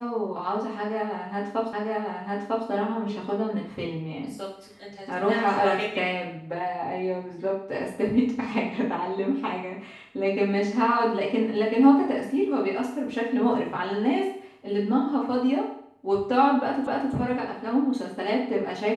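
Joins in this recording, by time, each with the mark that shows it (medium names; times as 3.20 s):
1.73 s: repeat of the last 0.95 s
16.87 s: repeat of the last 0.26 s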